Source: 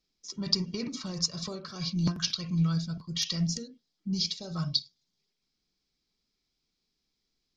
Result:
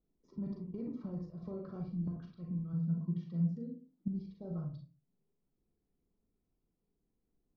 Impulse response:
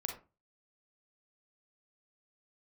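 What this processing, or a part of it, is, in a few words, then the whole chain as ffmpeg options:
television next door: -filter_complex "[0:a]acompressor=threshold=0.00891:ratio=5,lowpass=580[s0];[1:a]atrim=start_sample=2205[s1];[s0][s1]afir=irnorm=-1:irlink=0,asettb=1/sr,asplit=3[s2][s3][s4];[s2]atrim=end=2.734[s5];[s3]atrim=start=2.73:end=4.08,asetpts=PTS-STARTPTS,afade=t=in:d=0.004:c=qsin,afade=t=out:st=1.346:d=0.004:c=qsin,lowshelf=f=110:t=q:w=3:g=-13.5[s6];[s4]atrim=start=4.076[s7];[s5][s6]acrossfade=d=0.004:c1=hsin:c2=qsin[s8];[s8][s7]acrossfade=d=0.004:c1=qsin:c2=hsin,volume=1.68"

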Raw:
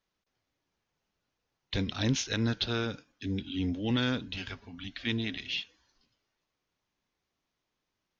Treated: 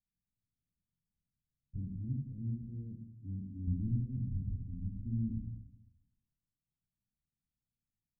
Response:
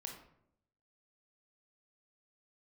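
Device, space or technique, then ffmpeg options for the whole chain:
club heard from the street: -filter_complex "[0:a]asettb=1/sr,asplit=3[s0][s1][s2];[s0]atrim=end=3.674[s3];[s1]atrim=start=3.67:end=5.49,asetpts=PTS-STARTPTS,afade=t=in:d=0.004:c=qsin,afade=t=out:st=1.816:d=0.004:c=qsin,aemphasis=mode=reproduction:type=riaa[s4];[s2]atrim=start=5.486[s5];[s3][s4]acrossfade=d=0.004:c1=hsin:c2=qsin[s6];[s6][s5]acrossfade=d=0.004:c1=qsin:c2=hsin,alimiter=limit=0.0944:level=0:latency=1:release=165,lowpass=f=200:w=0.5412,lowpass=f=200:w=1.3066[s7];[1:a]atrim=start_sample=2205[s8];[s7][s8]afir=irnorm=-1:irlink=0"

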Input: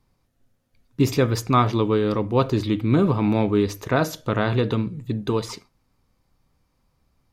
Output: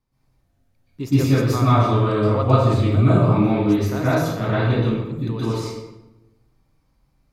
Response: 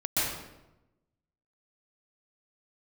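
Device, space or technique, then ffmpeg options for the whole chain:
bathroom: -filter_complex "[0:a]asettb=1/sr,asplit=3[s0][s1][s2];[s0]atrim=end=1.624[s3];[s1]atrim=start=1.62:end=3.25,asetpts=PTS-STARTPTS,afade=t=in:d=0.004:c=qsin,afade=t=out:st=1.626:d=0.004:c=qsin,equalizer=f=100:t=o:w=0.33:g=9,equalizer=f=315:t=o:w=0.33:g=-5,equalizer=f=630:t=o:w=0.33:g=11,equalizer=f=1250:t=o:w=0.33:g=8,equalizer=f=8000:t=o:w=0.33:g=11[s4];[s2]atrim=start=3.246[s5];[s3][s4]acrossfade=d=0.004:c1=hsin:c2=qsin[s6];[s6][s5]acrossfade=d=0.004:c1=qsin:c2=hsin[s7];[1:a]atrim=start_sample=2205[s8];[s7][s8]afir=irnorm=-1:irlink=0,volume=0.335"

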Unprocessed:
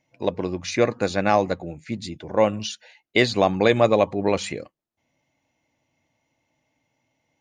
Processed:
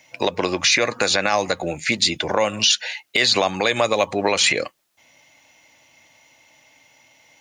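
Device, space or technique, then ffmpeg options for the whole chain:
mastering chain: -filter_complex "[0:a]equalizer=f=550:t=o:w=0.33:g=2,acrossover=split=250|6300[s0][s1][s2];[s0]acompressor=threshold=0.0141:ratio=4[s3];[s1]acompressor=threshold=0.0501:ratio=4[s4];[s2]acompressor=threshold=0.00316:ratio=4[s5];[s3][s4][s5]amix=inputs=3:normalize=0,acompressor=threshold=0.0398:ratio=2.5,tiltshelf=f=730:g=-9,asoftclip=type=hard:threshold=0.355,alimiter=level_in=9.44:limit=0.891:release=50:level=0:latency=1,volume=0.562"

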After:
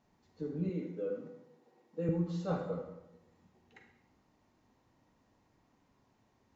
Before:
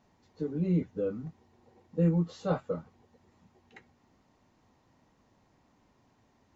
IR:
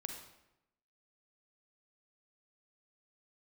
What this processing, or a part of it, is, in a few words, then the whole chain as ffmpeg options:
bathroom: -filter_complex "[1:a]atrim=start_sample=2205[s0];[0:a][s0]afir=irnorm=-1:irlink=0,asettb=1/sr,asplit=3[s1][s2][s3];[s1]atrim=end=0.694[s4];[s2]atrim=start=0.69:end=2.09,asetpts=PTS-STARTPTS,afade=t=in:d=0.004:c=qsin,afade=t=out:st=1.396:d=0.004:c=qsin,highpass=280[s5];[s3]atrim=start=2.086[s6];[s4][s5]acrossfade=d=0.004:c1=hsin:c2=qsin[s7];[s7][s6]acrossfade=d=0.004:c1=qsin:c2=hsin,volume=0.75"

